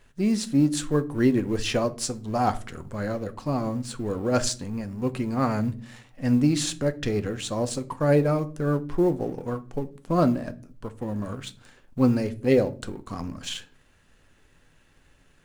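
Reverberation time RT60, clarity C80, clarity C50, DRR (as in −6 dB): 0.40 s, 23.5 dB, 18.5 dB, 10.0 dB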